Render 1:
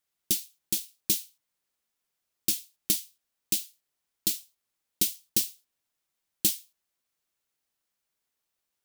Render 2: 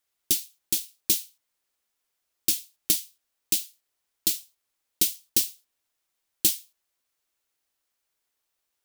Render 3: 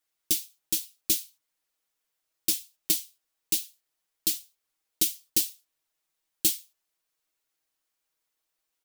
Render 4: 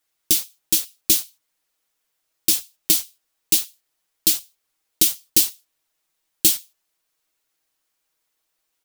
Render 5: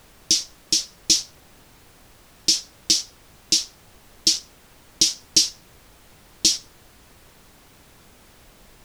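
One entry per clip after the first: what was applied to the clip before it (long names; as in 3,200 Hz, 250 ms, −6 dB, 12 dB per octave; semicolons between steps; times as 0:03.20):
parametric band 160 Hz −8.5 dB 1 octave; level +3 dB
comb filter 6.3 ms; level −3.5 dB
in parallel at −4.5 dB: bit-depth reduction 6 bits, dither none; on the sum: boost into a limiter +7.5 dB; level −1 dB
low-pass with resonance 5,500 Hz, resonance Q 4.1; background noise pink −48 dBFS; level −3 dB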